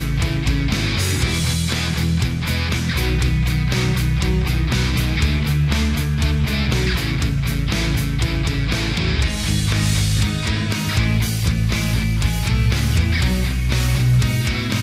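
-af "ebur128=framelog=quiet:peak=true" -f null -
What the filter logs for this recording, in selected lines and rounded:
Integrated loudness:
  I:         -19.3 LUFS
  Threshold: -29.3 LUFS
Loudness range:
  LRA:         1.2 LU
  Threshold: -39.4 LUFS
  LRA low:   -20.0 LUFS
  LRA high:  -18.8 LUFS
True peak:
  Peak:       -5.9 dBFS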